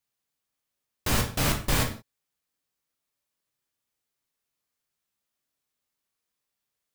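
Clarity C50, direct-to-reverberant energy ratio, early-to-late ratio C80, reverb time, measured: 9.0 dB, 2.0 dB, 14.0 dB, no single decay rate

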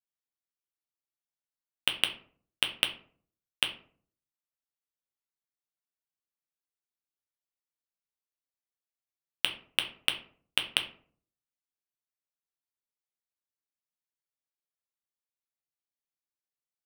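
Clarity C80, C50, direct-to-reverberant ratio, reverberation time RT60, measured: 16.0 dB, 12.0 dB, 4.5 dB, 0.50 s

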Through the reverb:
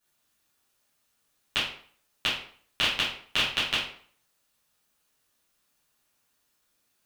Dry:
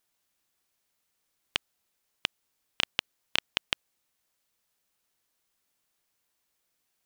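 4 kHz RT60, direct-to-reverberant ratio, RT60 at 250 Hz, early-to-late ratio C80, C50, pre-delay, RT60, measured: 0.40 s, -11.0 dB, 0.50 s, 8.5 dB, 3.5 dB, 7 ms, 0.50 s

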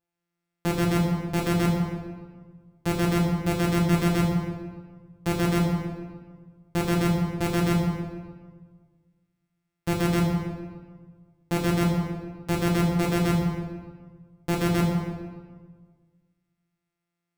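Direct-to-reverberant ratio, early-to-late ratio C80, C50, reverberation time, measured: -4.0 dB, 3.0 dB, 1.0 dB, 1.5 s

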